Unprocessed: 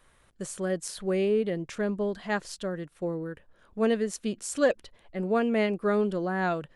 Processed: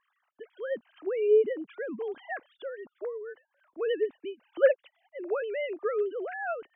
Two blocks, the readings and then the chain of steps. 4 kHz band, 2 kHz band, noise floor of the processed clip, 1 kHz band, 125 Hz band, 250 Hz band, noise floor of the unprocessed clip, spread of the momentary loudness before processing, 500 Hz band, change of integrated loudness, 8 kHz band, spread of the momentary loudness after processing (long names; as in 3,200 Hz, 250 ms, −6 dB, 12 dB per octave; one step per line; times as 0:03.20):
−8.0 dB, −3.5 dB, −80 dBFS, −6.5 dB, below −25 dB, −14.0 dB, −63 dBFS, 11 LU, 0.0 dB, −1.5 dB, below −40 dB, 17 LU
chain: three sine waves on the formant tracks
level −2 dB